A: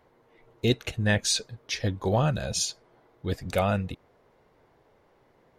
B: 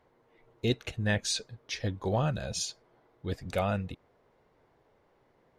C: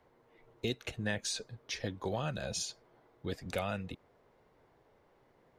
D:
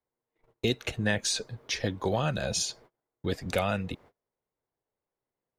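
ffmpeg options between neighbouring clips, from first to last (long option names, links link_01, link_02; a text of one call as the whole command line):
ffmpeg -i in.wav -af "highshelf=frequency=11000:gain=-8.5,volume=-4.5dB" out.wav
ffmpeg -i in.wav -filter_complex "[0:a]acrossover=split=170|1700|6700[link_01][link_02][link_03][link_04];[link_01]acompressor=threshold=-45dB:ratio=4[link_05];[link_02]acompressor=threshold=-34dB:ratio=4[link_06];[link_03]acompressor=threshold=-39dB:ratio=4[link_07];[link_04]acompressor=threshold=-41dB:ratio=4[link_08];[link_05][link_06][link_07][link_08]amix=inputs=4:normalize=0" out.wav
ffmpeg -i in.wav -af "agate=range=-31dB:threshold=-59dB:ratio=16:detection=peak,volume=7.5dB" out.wav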